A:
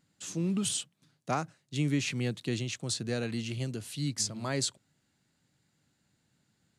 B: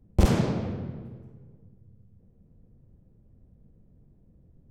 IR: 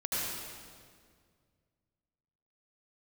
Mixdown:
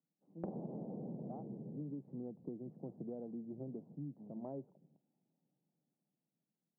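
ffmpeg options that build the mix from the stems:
-filter_complex "[0:a]dynaudnorm=f=250:g=13:m=5.01,volume=0.141[s0];[1:a]agate=range=0.0224:threshold=0.00355:ratio=3:detection=peak,dynaudnorm=f=220:g=13:m=4.73,adelay=250,volume=0.841,asplit=2[s1][s2];[s2]volume=0.1[s3];[2:a]atrim=start_sample=2205[s4];[s3][s4]afir=irnorm=-1:irlink=0[s5];[s0][s1][s5]amix=inputs=3:normalize=0,asuperpass=centerf=350:order=12:qfactor=0.51,acompressor=threshold=0.00891:ratio=10"

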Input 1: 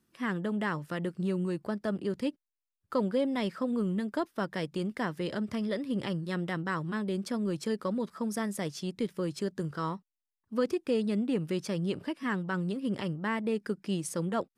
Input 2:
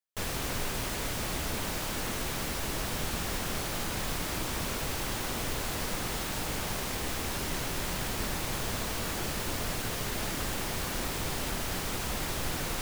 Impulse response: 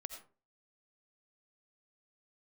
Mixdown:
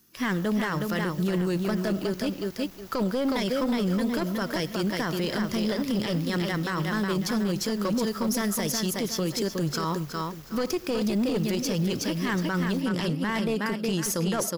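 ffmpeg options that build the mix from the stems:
-filter_complex "[0:a]highshelf=f=3500:g=11,acontrast=83,volume=0.794,asplit=3[s0][s1][s2];[s1]volume=0.335[s3];[s2]volume=0.631[s4];[1:a]volume=47.3,asoftclip=hard,volume=0.0211,volume=0.188[s5];[2:a]atrim=start_sample=2205[s6];[s3][s6]afir=irnorm=-1:irlink=0[s7];[s4]aecho=0:1:366|732|1098|1464:1|0.27|0.0729|0.0197[s8];[s0][s5][s7][s8]amix=inputs=4:normalize=0,aexciter=amount=1.4:drive=1.2:freq=5100,aeval=exprs='clip(val(0),-1,0.0841)':c=same,alimiter=limit=0.119:level=0:latency=1:release=21"

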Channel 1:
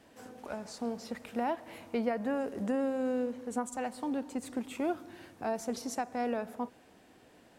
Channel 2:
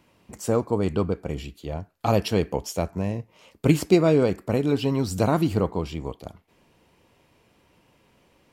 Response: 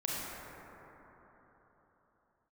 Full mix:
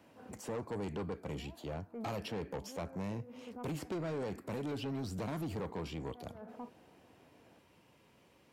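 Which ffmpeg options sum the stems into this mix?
-filter_complex "[0:a]lowpass=f=1600:w=0.5412,lowpass=f=1600:w=1.3066,alimiter=level_in=2.11:limit=0.0631:level=0:latency=1,volume=0.473,volume=0.631[s0];[1:a]acrossover=split=130|3000[s1][s2][s3];[s1]acompressor=threshold=0.0141:ratio=4[s4];[s2]acompressor=threshold=0.0631:ratio=4[s5];[s3]acompressor=threshold=0.00398:ratio=4[s6];[s4][s5][s6]amix=inputs=3:normalize=0,asoftclip=type=tanh:threshold=0.0531,volume=0.596,asplit=2[s7][s8];[s8]apad=whole_len=334614[s9];[s0][s9]sidechaincompress=threshold=0.00158:ratio=8:attack=8.6:release=123[s10];[s10][s7]amix=inputs=2:normalize=0,highpass=73,asoftclip=type=tanh:threshold=0.0237"

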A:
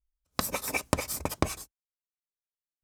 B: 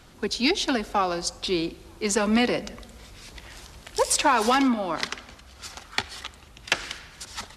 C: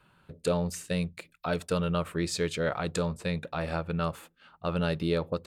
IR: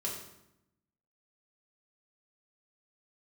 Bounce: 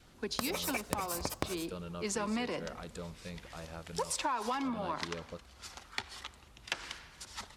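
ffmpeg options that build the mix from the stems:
-filter_complex "[0:a]volume=0.944[s0];[1:a]adynamicequalizer=threshold=0.00794:dfrequency=1000:dqfactor=4:tfrequency=1000:tqfactor=4:attack=5:release=100:ratio=0.375:range=4:mode=boostabove:tftype=bell,volume=0.376[s1];[2:a]volume=0.188[s2];[s0][s1][s2]amix=inputs=3:normalize=0,acompressor=threshold=0.0251:ratio=4"

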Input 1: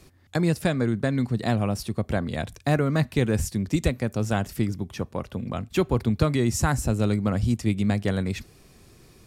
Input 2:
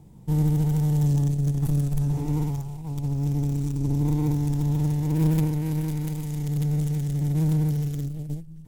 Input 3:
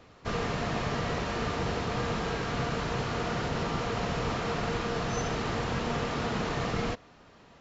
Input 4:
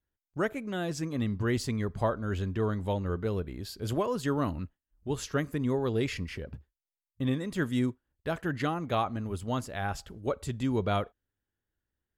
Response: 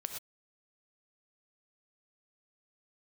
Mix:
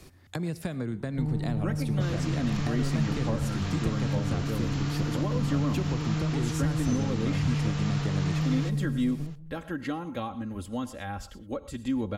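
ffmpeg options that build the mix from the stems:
-filter_complex "[0:a]acompressor=threshold=0.0224:ratio=3,volume=1,asplit=2[s0][s1];[s1]volume=0.299[s2];[1:a]lowpass=2100,alimiter=limit=0.0794:level=0:latency=1,adelay=900,volume=0.596,asplit=2[s3][s4];[s4]volume=0.501[s5];[2:a]highpass=f=1100:p=1,aemphasis=mode=production:type=cd,adelay=1750,volume=0.891[s6];[3:a]aecho=1:1:3.7:0.65,adelay=1250,volume=0.668,asplit=2[s7][s8];[s8]volume=0.447[s9];[4:a]atrim=start_sample=2205[s10];[s2][s5][s9]amix=inputs=3:normalize=0[s11];[s11][s10]afir=irnorm=-1:irlink=0[s12];[s0][s3][s6][s7][s12]amix=inputs=5:normalize=0,acrossover=split=320[s13][s14];[s14]acompressor=threshold=0.0141:ratio=2.5[s15];[s13][s15]amix=inputs=2:normalize=0"

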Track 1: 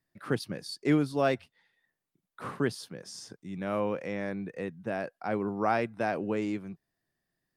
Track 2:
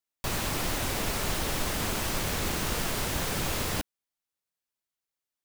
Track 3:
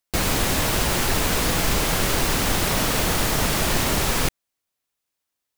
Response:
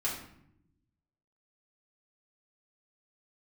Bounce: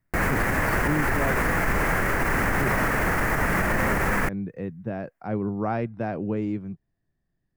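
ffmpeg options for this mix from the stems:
-filter_complex "[0:a]aemphasis=mode=reproduction:type=riaa,volume=0.794[s0];[2:a]highshelf=f=2600:t=q:w=3:g=-12,volume=1.26[s1];[s0][s1]amix=inputs=2:normalize=0,highshelf=f=10000:g=4,alimiter=limit=0.2:level=0:latency=1:release=64,volume=1"

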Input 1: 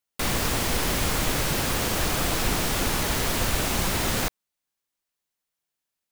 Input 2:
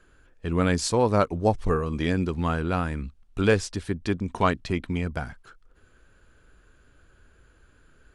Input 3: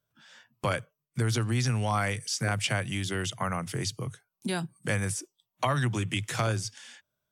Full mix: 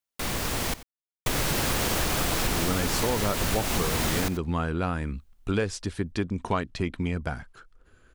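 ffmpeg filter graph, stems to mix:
-filter_complex "[0:a]dynaudnorm=f=400:g=5:m=2.51,volume=0.596,asplit=3[s0][s1][s2];[s0]atrim=end=0.74,asetpts=PTS-STARTPTS,afade=t=out:st=0.736:d=0.004:c=hsin[s3];[s1]atrim=start=0.74:end=1.26,asetpts=PTS-STARTPTS,volume=0[s4];[s2]atrim=start=1.26,asetpts=PTS-STARTPTS,afade=t=in:d=0.004:c=hsin[s5];[s3][s4][s5]concat=n=3:v=0:a=1,asplit=2[s6][s7];[s7]volume=0.133[s8];[1:a]adelay=2100,volume=1[s9];[s8]aecho=0:1:90:1[s10];[s6][s9][s10]amix=inputs=3:normalize=0,acompressor=threshold=0.0794:ratio=6"

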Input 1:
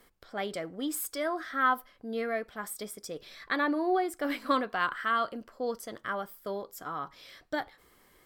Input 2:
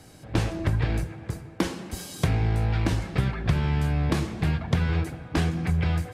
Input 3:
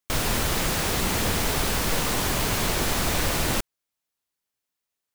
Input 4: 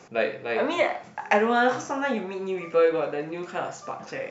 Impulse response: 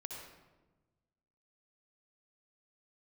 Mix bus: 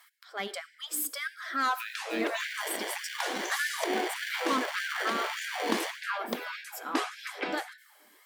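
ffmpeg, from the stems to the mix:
-filter_complex "[0:a]equalizer=f=550:t=o:w=1.5:g=-7.5,bandreject=f=60:t=h:w=6,bandreject=f=120:t=h:w=6,bandreject=f=180:t=h:w=6,bandreject=f=240:t=h:w=6,bandreject=f=300:t=h:w=6,asoftclip=type=tanh:threshold=0.0447,volume=1.41,asplit=2[s0][s1];[s1]volume=0.299[s2];[1:a]adelay=1600,volume=1.06[s3];[2:a]acrusher=samples=34:mix=1:aa=0.000001,equalizer=f=2500:t=o:w=2.3:g=10,adelay=2300,volume=0.447,asplit=2[s4][s5];[s5]volume=0.501[s6];[3:a]crystalizer=i=5.5:c=0,acrusher=bits=5:mix=0:aa=0.5,adelay=1650,volume=0.473[s7];[s0][s3]amix=inputs=2:normalize=0,aphaser=in_gain=1:out_gain=1:delay=1.3:decay=0.25:speed=0.81:type=sinusoidal,alimiter=limit=0.211:level=0:latency=1:release=352,volume=1[s8];[s4][s7]amix=inputs=2:normalize=0,acrossover=split=190[s9][s10];[s10]acompressor=threshold=0.0251:ratio=6[s11];[s9][s11]amix=inputs=2:normalize=0,alimiter=limit=0.0631:level=0:latency=1:release=293,volume=1[s12];[4:a]atrim=start_sample=2205[s13];[s2][s6]amix=inputs=2:normalize=0[s14];[s14][s13]afir=irnorm=-1:irlink=0[s15];[s8][s12][s15]amix=inputs=3:normalize=0,afftfilt=real='re*gte(b*sr/1024,200*pow(1500/200,0.5+0.5*sin(2*PI*1.7*pts/sr)))':imag='im*gte(b*sr/1024,200*pow(1500/200,0.5+0.5*sin(2*PI*1.7*pts/sr)))':win_size=1024:overlap=0.75"

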